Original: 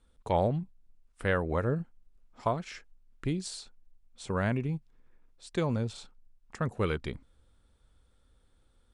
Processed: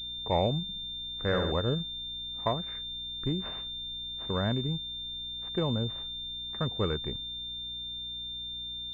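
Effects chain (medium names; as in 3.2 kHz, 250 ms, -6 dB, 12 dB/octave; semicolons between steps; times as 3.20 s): 0.62–1.52 s: flutter echo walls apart 12 m, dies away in 0.76 s; hum 60 Hz, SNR 18 dB; class-D stage that switches slowly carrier 3.6 kHz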